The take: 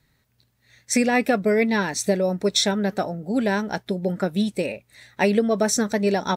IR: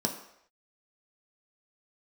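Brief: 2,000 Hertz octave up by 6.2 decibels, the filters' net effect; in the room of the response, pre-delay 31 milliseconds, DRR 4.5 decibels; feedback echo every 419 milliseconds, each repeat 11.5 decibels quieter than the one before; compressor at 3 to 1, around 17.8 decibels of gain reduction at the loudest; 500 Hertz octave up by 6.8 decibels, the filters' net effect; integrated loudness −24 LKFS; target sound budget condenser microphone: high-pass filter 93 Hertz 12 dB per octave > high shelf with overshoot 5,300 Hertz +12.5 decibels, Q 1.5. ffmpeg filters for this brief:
-filter_complex "[0:a]equalizer=frequency=500:width_type=o:gain=8,equalizer=frequency=2000:width_type=o:gain=8.5,acompressor=threshold=-34dB:ratio=3,aecho=1:1:419|838|1257:0.266|0.0718|0.0194,asplit=2[link_01][link_02];[1:a]atrim=start_sample=2205,adelay=31[link_03];[link_02][link_03]afir=irnorm=-1:irlink=0,volume=-11dB[link_04];[link_01][link_04]amix=inputs=2:normalize=0,highpass=93,highshelf=frequency=5300:width_type=q:width=1.5:gain=12.5,volume=2.5dB"

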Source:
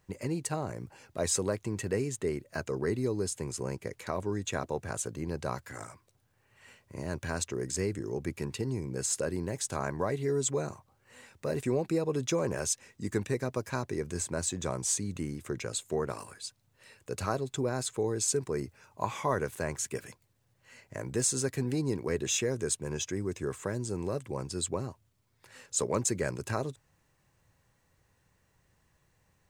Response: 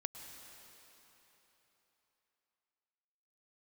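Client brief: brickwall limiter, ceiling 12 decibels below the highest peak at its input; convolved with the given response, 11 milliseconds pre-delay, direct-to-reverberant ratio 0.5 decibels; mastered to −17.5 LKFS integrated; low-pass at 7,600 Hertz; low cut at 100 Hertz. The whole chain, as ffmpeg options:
-filter_complex "[0:a]highpass=100,lowpass=7600,alimiter=level_in=3dB:limit=-24dB:level=0:latency=1,volume=-3dB,asplit=2[link_01][link_02];[1:a]atrim=start_sample=2205,adelay=11[link_03];[link_02][link_03]afir=irnorm=-1:irlink=0,volume=1dB[link_04];[link_01][link_04]amix=inputs=2:normalize=0,volume=18.5dB"

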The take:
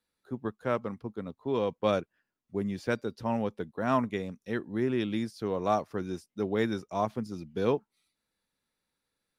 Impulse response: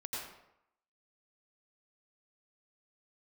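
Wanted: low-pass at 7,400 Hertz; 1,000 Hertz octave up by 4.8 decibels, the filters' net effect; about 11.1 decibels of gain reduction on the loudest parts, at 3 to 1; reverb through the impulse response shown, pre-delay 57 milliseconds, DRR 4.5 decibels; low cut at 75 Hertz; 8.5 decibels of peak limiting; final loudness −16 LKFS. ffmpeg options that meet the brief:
-filter_complex "[0:a]highpass=75,lowpass=7400,equalizer=frequency=1000:width_type=o:gain=6,acompressor=threshold=-34dB:ratio=3,alimiter=level_in=5dB:limit=-24dB:level=0:latency=1,volume=-5dB,asplit=2[link_01][link_02];[1:a]atrim=start_sample=2205,adelay=57[link_03];[link_02][link_03]afir=irnorm=-1:irlink=0,volume=-5.5dB[link_04];[link_01][link_04]amix=inputs=2:normalize=0,volume=24dB"

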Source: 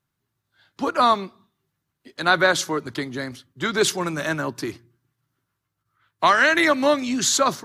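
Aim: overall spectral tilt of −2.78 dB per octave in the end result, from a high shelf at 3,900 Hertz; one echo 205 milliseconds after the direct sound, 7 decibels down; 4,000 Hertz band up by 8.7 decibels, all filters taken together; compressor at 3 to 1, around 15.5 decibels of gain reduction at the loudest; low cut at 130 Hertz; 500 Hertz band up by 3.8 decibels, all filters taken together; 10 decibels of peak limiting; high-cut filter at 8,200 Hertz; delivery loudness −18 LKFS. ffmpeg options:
ffmpeg -i in.wav -af "highpass=130,lowpass=8200,equalizer=frequency=500:width_type=o:gain=4.5,highshelf=frequency=3900:gain=4.5,equalizer=frequency=4000:width_type=o:gain=7.5,acompressor=threshold=-32dB:ratio=3,alimiter=level_in=0.5dB:limit=-24dB:level=0:latency=1,volume=-0.5dB,aecho=1:1:205:0.447,volume=16.5dB" out.wav

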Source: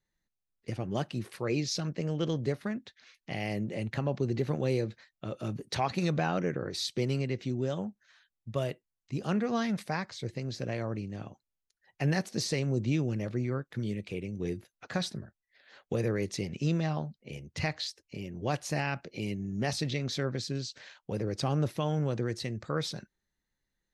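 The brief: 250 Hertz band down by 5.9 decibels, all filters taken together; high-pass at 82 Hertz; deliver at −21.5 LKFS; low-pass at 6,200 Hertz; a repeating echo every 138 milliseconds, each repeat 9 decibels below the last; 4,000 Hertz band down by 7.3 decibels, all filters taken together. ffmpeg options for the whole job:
ffmpeg -i in.wav -af "highpass=82,lowpass=6200,equalizer=frequency=250:width_type=o:gain=-9,equalizer=frequency=4000:width_type=o:gain=-8,aecho=1:1:138|276|414|552:0.355|0.124|0.0435|0.0152,volume=15dB" out.wav

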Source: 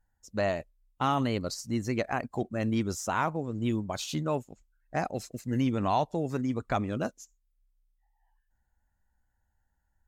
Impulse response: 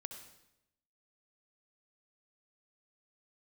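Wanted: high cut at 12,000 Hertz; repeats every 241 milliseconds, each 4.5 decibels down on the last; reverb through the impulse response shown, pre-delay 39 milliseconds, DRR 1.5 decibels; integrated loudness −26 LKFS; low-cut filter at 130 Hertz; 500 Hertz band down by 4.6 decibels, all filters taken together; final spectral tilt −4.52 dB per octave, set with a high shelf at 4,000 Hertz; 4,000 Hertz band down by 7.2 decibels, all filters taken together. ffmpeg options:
-filter_complex "[0:a]highpass=130,lowpass=12000,equalizer=frequency=500:width_type=o:gain=-6,highshelf=frequency=4000:gain=-7.5,equalizer=frequency=4000:width_type=o:gain=-5,aecho=1:1:241|482|723|964|1205|1446|1687|1928|2169:0.596|0.357|0.214|0.129|0.0772|0.0463|0.0278|0.0167|0.01,asplit=2[link_01][link_02];[1:a]atrim=start_sample=2205,adelay=39[link_03];[link_02][link_03]afir=irnorm=-1:irlink=0,volume=2dB[link_04];[link_01][link_04]amix=inputs=2:normalize=0,volume=4dB"

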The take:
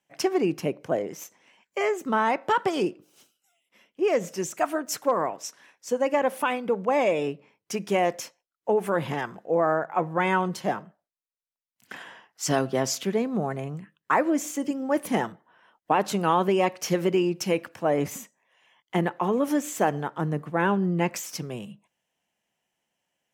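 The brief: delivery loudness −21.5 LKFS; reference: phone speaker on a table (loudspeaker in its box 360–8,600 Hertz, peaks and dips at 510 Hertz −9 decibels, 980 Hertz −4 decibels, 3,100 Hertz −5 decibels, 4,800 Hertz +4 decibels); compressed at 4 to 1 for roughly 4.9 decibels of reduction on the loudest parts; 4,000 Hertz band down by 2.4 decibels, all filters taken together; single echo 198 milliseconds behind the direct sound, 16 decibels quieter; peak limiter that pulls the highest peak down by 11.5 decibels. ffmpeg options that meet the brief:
ffmpeg -i in.wav -af "equalizer=frequency=4000:width_type=o:gain=-3.5,acompressor=threshold=-24dB:ratio=4,alimiter=limit=-23.5dB:level=0:latency=1,highpass=frequency=360:width=0.5412,highpass=frequency=360:width=1.3066,equalizer=frequency=510:width_type=q:width=4:gain=-9,equalizer=frequency=980:width_type=q:width=4:gain=-4,equalizer=frequency=3100:width_type=q:width=4:gain=-5,equalizer=frequency=4800:width_type=q:width=4:gain=4,lowpass=frequency=8600:width=0.5412,lowpass=frequency=8600:width=1.3066,aecho=1:1:198:0.158,volume=17dB" out.wav

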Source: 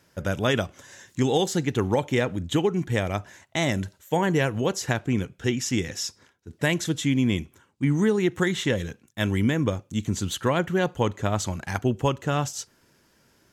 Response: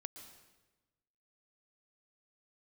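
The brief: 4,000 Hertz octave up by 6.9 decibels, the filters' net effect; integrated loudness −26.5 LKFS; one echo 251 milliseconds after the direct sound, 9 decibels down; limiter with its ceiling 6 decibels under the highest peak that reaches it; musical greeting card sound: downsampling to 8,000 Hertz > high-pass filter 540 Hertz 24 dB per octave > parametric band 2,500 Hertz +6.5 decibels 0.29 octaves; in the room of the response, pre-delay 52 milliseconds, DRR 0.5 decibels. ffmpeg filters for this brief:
-filter_complex "[0:a]equalizer=frequency=4000:width_type=o:gain=8,alimiter=limit=-13.5dB:level=0:latency=1,aecho=1:1:251:0.355,asplit=2[link_01][link_02];[1:a]atrim=start_sample=2205,adelay=52[link_03];[link_02][link_03]afir=irnorm=-1:irlink=0,volume=3.5dB[link_04];[link_01][link_04]amix=inputs=2:normalize=0,aresample=8000,aresample=44100,highpass=frequency=540:width=0.5412,highpass=frequency=540:width=1.3066,equalizer=frequency=2500:width_type=o:width=0.29:gain=6.5,volume=1dB"

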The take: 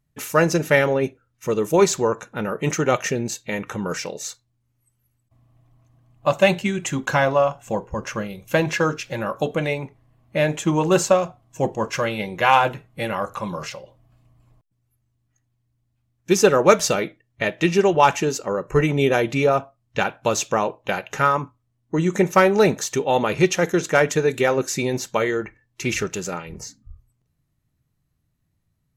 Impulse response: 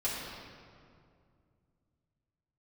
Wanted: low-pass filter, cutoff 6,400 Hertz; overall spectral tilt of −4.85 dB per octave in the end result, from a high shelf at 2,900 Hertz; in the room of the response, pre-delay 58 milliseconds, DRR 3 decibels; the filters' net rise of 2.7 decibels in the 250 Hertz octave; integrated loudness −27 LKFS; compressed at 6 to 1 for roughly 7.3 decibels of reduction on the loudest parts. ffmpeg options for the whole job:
-filter_complex "[0:a]lowpass=6400,equalizer=frequency=250:width_type=o:gain=4,highshelf=frequency=2900:gain=4.5,acompressor=threshold=-16dB:ratio=6,asplit=2[link_01][link_02];[1:a]atrim=start_sample=2205,adelay=58[link_03];[link_02][link_03]afir=irnorm=-1:irlink=0,volume=-9.5dB[link_04];[link_01][link_04]amix=inputs=2:normalize=0,volume=-5.5dB"

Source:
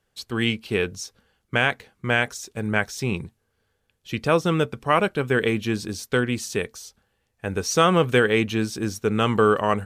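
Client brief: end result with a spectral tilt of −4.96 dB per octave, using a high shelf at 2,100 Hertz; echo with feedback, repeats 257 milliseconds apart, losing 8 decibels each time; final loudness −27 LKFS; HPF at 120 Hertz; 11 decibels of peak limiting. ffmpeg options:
ffmpeg -i in.wav -af "highpass=120,highshelf=frequency=2100:gain=-4,alimiter=limit=-16.5dB:level=0:latency=1,aecho=1:1:257|514|771|1028|1285:0.398|0.159|0.0637|0.0255|0.0102,volume=2dB" out.wav

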